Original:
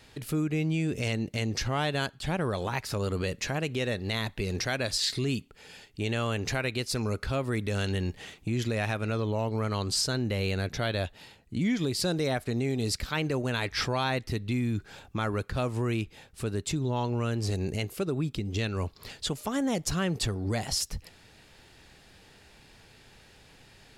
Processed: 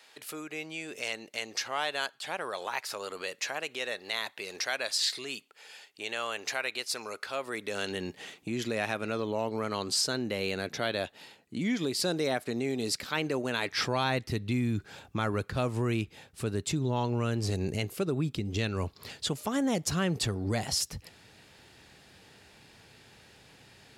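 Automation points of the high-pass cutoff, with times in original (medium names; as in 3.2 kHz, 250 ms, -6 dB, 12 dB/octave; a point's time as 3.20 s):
7.31 s 640 Hz
8.12 s 220 Hz
13.65 s 220 Hz
14.16 s 81 Hz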